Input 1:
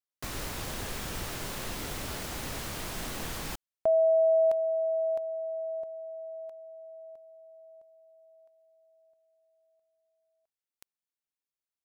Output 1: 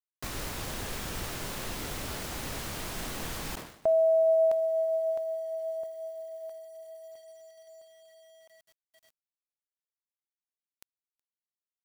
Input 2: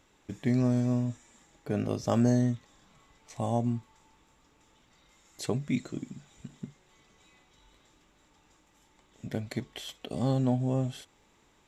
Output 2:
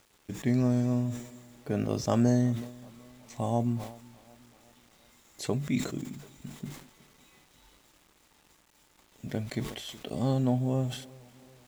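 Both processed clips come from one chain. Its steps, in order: tape echo 371 ms, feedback 61%, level -21 dB, low-pass 1.9 kHz; word length cut 10-bit, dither none; decay stretcher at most 89 dB/s

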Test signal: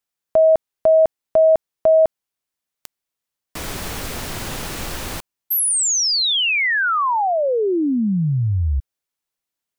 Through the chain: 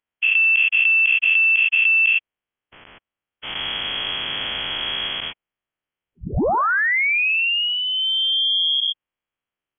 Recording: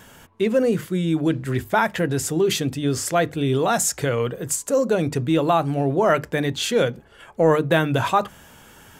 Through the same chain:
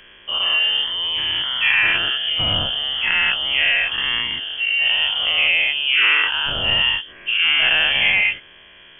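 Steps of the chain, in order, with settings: every event in the spectrogram widened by 240 ms; dynamic bell 310 Hz, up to -4 dB, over -26 dBFS, Q 1.6; frequency inversion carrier 3.3 kHz; trim -3.5 dB

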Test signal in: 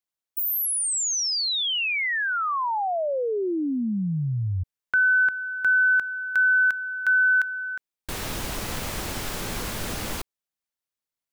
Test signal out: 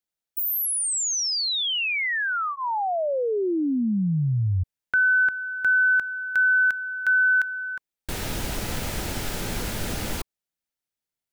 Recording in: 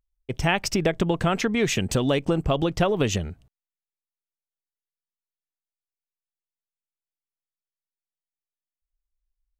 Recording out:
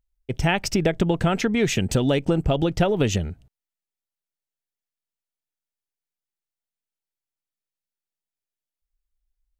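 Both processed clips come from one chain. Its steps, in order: bass shelf 340 Hz +3.5 dB; band-stop 1.1 kHz, Q 7.4

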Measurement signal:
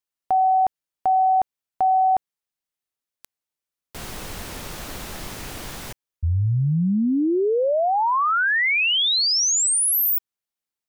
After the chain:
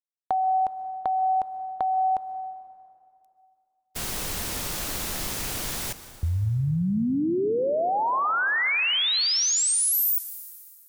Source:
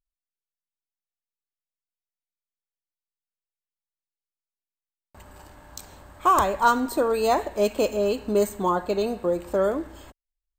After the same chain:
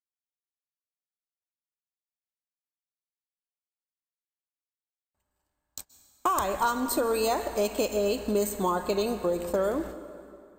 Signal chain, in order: gate -38 dBFS, range -35 dB; treble shelf 3.9 kHz +8.5 dB; compression, threshold -23 dBFS; plate-style reverb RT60 2.6 s, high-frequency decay 0.75×, pre-delay 115 ms, DRR 12.5 dB

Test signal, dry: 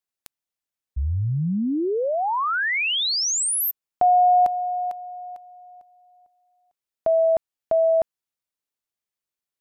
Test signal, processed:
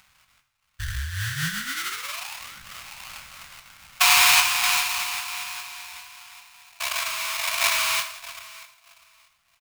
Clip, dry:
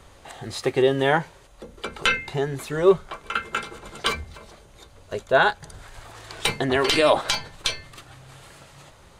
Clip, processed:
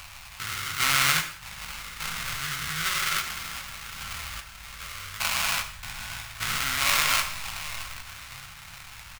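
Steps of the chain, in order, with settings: spectrogram pixelated in time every 400 ms; in parallel at -1 dB: upward compressor, threshold -31 dBFS; on the sum: tilt EQ -2 dB/octave; doubling 19 ms -7.5 dB; repeats whose band climbs or falls 625 ms, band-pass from 1.3 kHz, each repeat 0.7 oct, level -5.5 dB; sample-rate reducer 1.7 kHz, jitter 20%; FFT filter 130 Hz 0 dB, 390 Hz -20 dB, 1.5 kHz +15 dB; gated-style reverb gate 220 ms falling, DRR 6 dB; trim -15.5 dB

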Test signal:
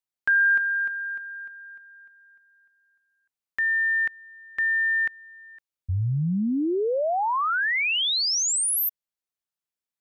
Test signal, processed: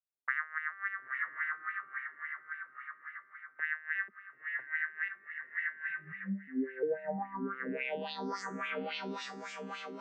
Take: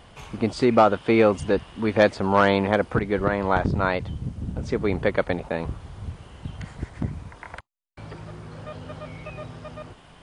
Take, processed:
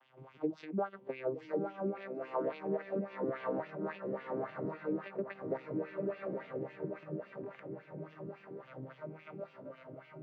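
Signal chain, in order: vocoder on a broken chord minor triad, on C3, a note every 359 ms; echo that smears into a reverb 960 ms, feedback 46%, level -3.5 dB; compression 16:1, threshold -25 dBFS; wah-wah 3.6 Hz 300–2900 Hz, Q 2.2

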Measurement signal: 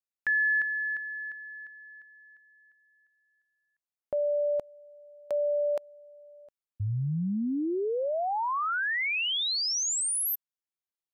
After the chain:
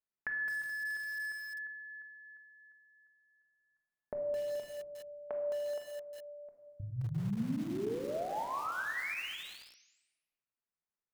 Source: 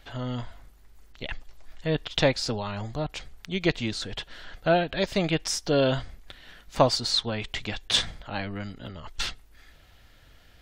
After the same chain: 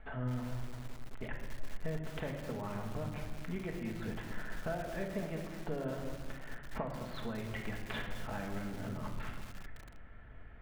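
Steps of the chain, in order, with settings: low-pass 2 kHz 24 dB/octave; compression 6:1, threshold -38 dBFS; simulated room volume 1200 m³, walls mixed, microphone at 1.5 m; bit-crushed delay 213 ms, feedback 55%, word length 7-bit, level -8 dB; trim -1.5 dB

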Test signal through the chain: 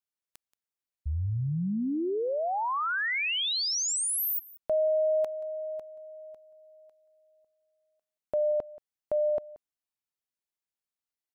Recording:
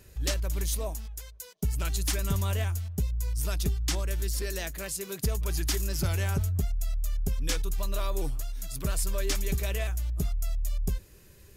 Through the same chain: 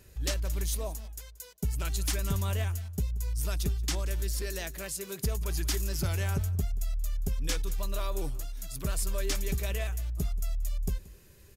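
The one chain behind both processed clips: delay 179 ms -20 dB; trim -2 dB

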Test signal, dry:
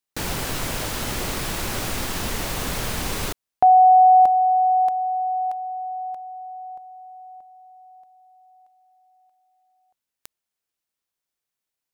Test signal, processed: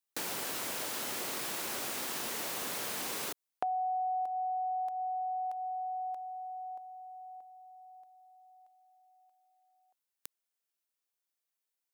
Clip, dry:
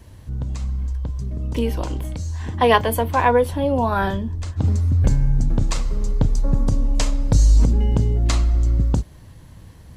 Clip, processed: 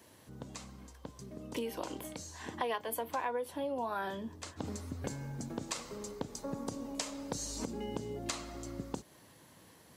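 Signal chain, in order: high-pass 290 Hz 12 dB/octave; treble shelf 8 kHz +5.5 dB; compression 5:1, threshold -28 dBFS; trim -6 dB

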